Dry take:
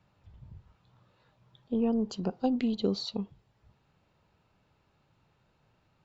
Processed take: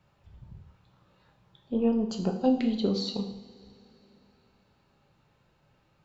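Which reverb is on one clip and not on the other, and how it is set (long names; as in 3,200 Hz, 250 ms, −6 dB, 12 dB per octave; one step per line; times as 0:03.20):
coupled-rooms reverb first 0.67 s, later 3.5 s, from −20 dB, DRR 2.5 dB
level +1 dB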